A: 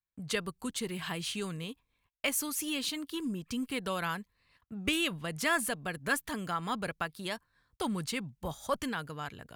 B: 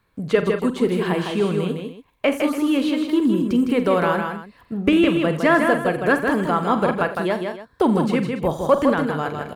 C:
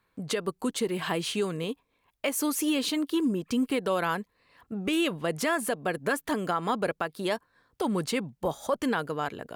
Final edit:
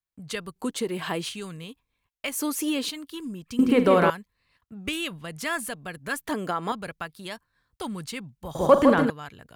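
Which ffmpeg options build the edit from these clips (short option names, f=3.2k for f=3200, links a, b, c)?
-filter_complex "[2:a]asplit=3[a][b][c];[1:a]asplit=2[d][e];[0:a]asplit=6[f][g][h][i][j][k];[f]atrim=end=0.562[l];[a]atrim=start=0.558:end=1.292[m];[g]atrim=start=1.288:end=2.332[n];[b]atrim=start=2.328:end=2.912[o];[h]atrim=start=2.908:end=3.592[p];[d]atrim=start=3.588:end=4.102[q];[i]atrim=start=4.098:end=6.272[r];[c]atrim=start=6.268:end=6.722[s];[j]atrim=start=6.718:end=8.552[t];[e]atrim=start=8.548:end=9.102[u];[k]atrim=start=9.098[v];[l][m]acrossfade=d=0.004:c1=hsin:c2=hsin[w];[w][n]acrossfade=d=0.004:c1=hsin:c2=hsin[x];[x][o]acrossfade=d=0.004:c1=hsin:c2=hsin[y];[y][p]acrossfade=d=0.004:c1=hsin:c2=hsin[z];[z][q]acrossfade=d=0.004:c1=hsin:c2=hsin[aa];[aa][r]acrossfade=d=0.004:c1=hsin:c2=hsin[ab];[ab][s]acrossfade=d=0.004:c1=hsin:c2=hsin[ac];[ac][t]acrossfade=d=0.004:c1=hsin:c2=hsin[ad];[ad][u]acrossfade=d=0.004:c1=hsin:c2=hsin[ae];[ae][v]acrossfade=d=0.004:c1=hsin:c2=hsin"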